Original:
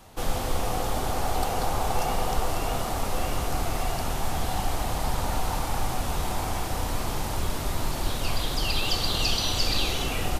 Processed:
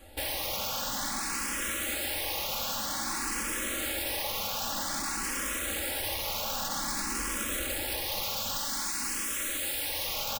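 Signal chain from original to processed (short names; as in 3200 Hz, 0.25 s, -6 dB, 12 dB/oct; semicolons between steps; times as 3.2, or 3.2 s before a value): rattling part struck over -30 dBFS, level -15 dBFS; 2.36–4.56 bell 200 Hz +7 dB 1.4 oct; wrapped overs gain 27 dB; comb 3.6 ms, depth 70%; endless phaser +0.52 Hz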